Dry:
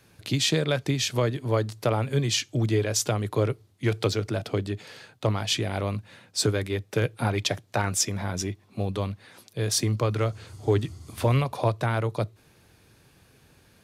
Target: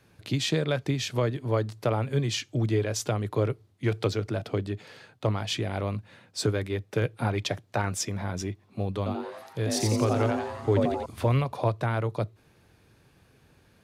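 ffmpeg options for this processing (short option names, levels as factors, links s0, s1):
-filter_complex "[0:a]highshelf=f=3600:g=-7,asettb=1/sr,asplit=3[s0][s1][s2];[s0]atrim=end=8.974[s3];[s1]atrim=start=8.97:end=11.06,asetpts=PTS-STARTPTS,afade=t=in:d=0.004:c=qsin,afade=t=out:st=2.086:d=0.004:c=qsin,asplit=9[s4][s5][s6][s7][s8][s9][s10][s11][s12];[s5]adelay=87,afreqshift=140,volume=0.708[s13];[s6]adelay=174,afreqshift=280,volume=0.398[s14];[s7]adelay=261,afreqshift=420,volume=0.221[s15];[s8]adelay=348,afreqshift=560,volume=0.124[s16];[s9]adelay=435,afreqshift=700,volume=0.07[s17];[s10]adelay=522,afreqshift=840,volume=0.0389[s18];[s11]adelay=609,afreqshift=980,volume=0.0219[s19];[s12]adelay=696,afreqshift=1120,volume=0.0122[s20];[s4][s13][s14][s15][s16][s17][s18][s19][s20]amix=inputs=9:normalize=0,atrim=end_sample=92169[s21];[s2]atrim=start=11.056[s22];[s3][s21]acrossfade=d=0.004:c1=hsin:c2=qsin[s23];[s23][s22]acrossfade=d=0.004:c1=qsin:c2=hsin,volume=0.841"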